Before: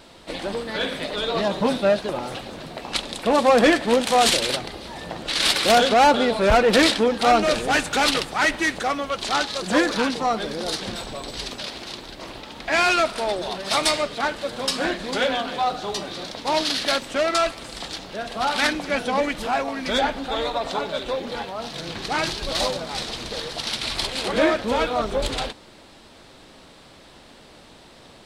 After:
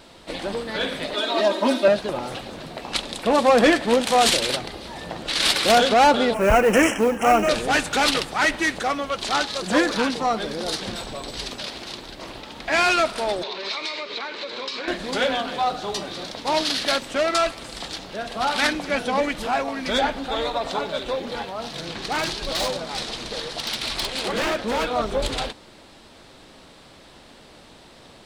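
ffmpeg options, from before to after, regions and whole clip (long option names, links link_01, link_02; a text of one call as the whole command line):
ffmpeg -i in.wav -filter_complex "[0:a]asettb=1/sr,asplit=3[link_01][link_02][link_03];[link_01]atrim=end=1.144[link_04];[link_02]atrim=start=1.14:end=1.88,asetpts=PTS-STARTPTS,afade=type=in:duration=0.004:curve=qsin,afade=type=out:start_time=0.736:duration=0.004:curve=qsin,highpass=frequency=230:width=0.5412,highpass=frequency=230:width=1.3066,aecho=1:1:3.2:0.89,atrim=end_sample=32634[link_05];[link_03]atrim=start=1.876[link_06];[link_04][link_05]acrossfade=duration=0.004:curve1=hsin:curve2=qsin[link_07];[link_07][link_06]acrossfade=duration=0.004:curve1=qsin:curve2=hsin,asettb=1/sr,asplit=3[link_08][link_09][link_10];[link_08]atrim=end=6.344[link_11];[link_09]atrim=start=6.34:end=7.49,asetpts=PTS-STARTPTS,afade=type=in:duration=0.004:curve=qsin,afade=type=out:start_time=1.146:duration=0.004:curve=qsin,asuperstop=centerf=4100:order=12:qfactor=1.7,acrusher=bits=6:mode=log:mix=0:aa=0.000001[link_12];[link_10]atrim=start=7.486[link_13];[link_11][link_12]acrossfade=duration=0.004:curve1=hsin:curve2=qsin[link_14];[link_14][link_13]acrossfade=duration=0.004:curve1=qsin:curve2=hsin,asettb=1/sr,asplit=3[link_15][link_16][link_17];[link_15]atrim=end=13.434[link_18];[link_16]atrim=start=13.43:end=14.88,asetpts=PTS-STARTPTS,afade=type=in:duration=0.004:curve=qsin,afade=type=out:start_time=1.446:duration=0.004:curve=qsin,acompressor=threshold=-28dB:ratio=16:attack=3.2:release=140:knee=1:detection=peak,highpass=320,equalizer=frequency=400:width_type=q:width=4:gain=7,equalizer=frequency=730:width_type=q:width=4:gain=-7,equalizer=frequency=1000:width_type=q:width=4:gain=5,equalizer=frequency=2300:width_type=q:width=4:gain=9,equalizer=frequency=4000:width_type=q:width=4:gain=8,lowpass=frequency=6100:width=0.5412,lowpass=frequency=6100:width=1.3066[link_19];[link_17]atrim=start=14.876[link_20];[link_18][link_19]acrossfade=duration=0.004:curve1=hsin:curve2=qsin[link_21];[link_21][link_20]acrossfade=duration=0.004:curve1=qsin:curve2=hsin,asettb=1/sr,asplit=3[link_22][link_23][link_24];[link_22]atrim=end=21.864[link_25];[link_23]atrim=start=21.86:end=24.93,asetpts=PTS-STARTPTS,afade=type=in:duration=0.004:curve=qsin,afade=type=out:start_time=3.066:duration=0.004:curve=qsin,lowpass=12000,equalizer=frequency=82:width=1.4:gain=-6,aeval=exprs='0.126*(abs(mod(val(0)/0.126+3,4)-2)-1)':channel_layout=same[link_26];[link_24]atrim=start=24.926[link_27];[link_25][link_26]acrossfade=duration=0.004:curve1=hsin:curve2=qsin[link_28];[link_28][link_27]acrossfade=duration=0.004:curve1=qsin:curve2=hsin" out.wav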